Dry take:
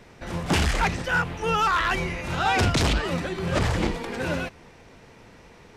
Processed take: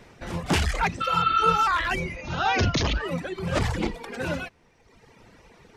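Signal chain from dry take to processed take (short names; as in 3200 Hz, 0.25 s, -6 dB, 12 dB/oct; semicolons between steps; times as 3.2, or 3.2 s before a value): reverb removal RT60 1.3 s; 1.04–1.6 spectral repair 1100–4600 Hz after; 2.16–3.01 brick-wall FIR low-pass 6800 Hz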